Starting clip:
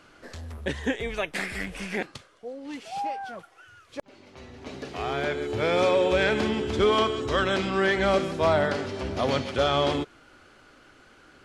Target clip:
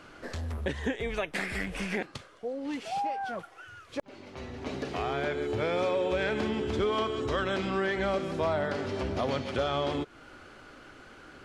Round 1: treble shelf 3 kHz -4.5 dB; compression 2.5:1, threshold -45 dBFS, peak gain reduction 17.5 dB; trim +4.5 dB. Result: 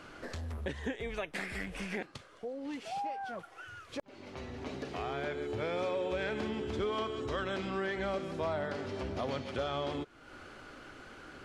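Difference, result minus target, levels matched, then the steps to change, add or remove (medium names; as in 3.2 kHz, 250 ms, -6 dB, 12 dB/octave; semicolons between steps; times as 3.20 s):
compression: peak gain reduction +5.5 dB
change: compression 2.5:1, threshold -35.5 dBFS, peak gain reduction 12 dB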